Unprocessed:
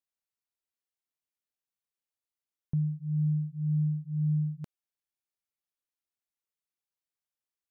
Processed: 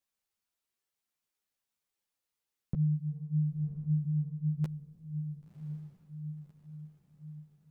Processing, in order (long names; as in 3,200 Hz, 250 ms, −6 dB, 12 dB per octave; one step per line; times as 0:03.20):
downward compressor, threshold −31 dBFS, peak gain reduction 6 dB
feedback delay with all-pass diffusion 1,065 ms, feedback 50%, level −11.5 dB
string-ensemble chorus
level +8 dB